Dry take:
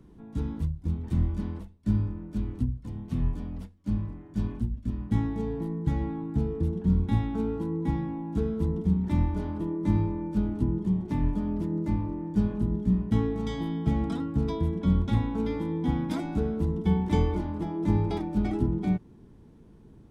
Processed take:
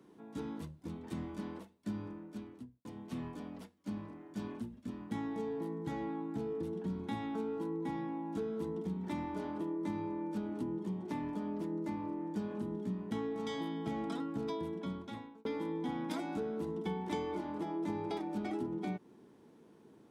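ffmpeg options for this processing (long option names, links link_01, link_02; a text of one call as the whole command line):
ffmpeg -i in.wav -filter_complex "[0:a]asplit=3[link_01][link_02][link_03];[link_01]atrim=end=2.85,asetpts=PTS-STARTPTS,afade=type=out:start_time=2.08:duration=0.77[link_04];[link_02]atrim=start=2.85:end=15.45,asetpts=PTS-STARTPTS,afade=type=in:duration=0.004:curve=hsin,afade=type=out:start_time=11.61:duration=0.99[link_05];[link_03]atrim=start=15.45,asetpts=PTS-STARTPTS,afade=type=in:duration=0.004:curve=hsin[link_06];[link_04][link_05][link_06]concat=n=3:v=0:a=1,highpass=320,acompressor=threshold=-35dB:ratio=3" out.wav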